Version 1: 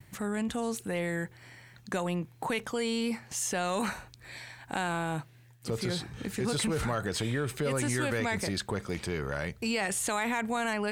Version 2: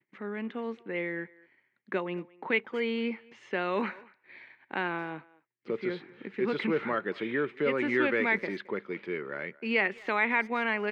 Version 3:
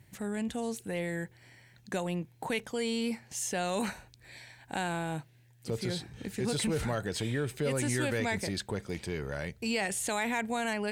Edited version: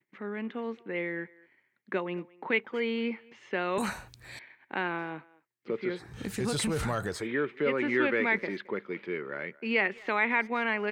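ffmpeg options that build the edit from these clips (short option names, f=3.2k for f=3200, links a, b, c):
-filter_complex "[0:a]asplit=2[a][b];[1:a]asplit=3[c][d][e];[c]atrim=end=3.782[f];[a]atrim=start=3.778:end=4.392[g];[d]atrim=start=4.388:end=6.19[h];[b]atrim=start=5.95:end=7.28[i];[e]atrim=start=7.04[j];[f][g]acrossfade=d=0.004:c1=hsin:c2=hsin[k];[k][h]acrossfade=d=0.004:c1=hsin:c2=hsin[l];[l][i]acrossfade=d=0.24:c1=tri:c2=tri[m];[m][j]acrossfade=d=0.24:c1=tri:c2=tri"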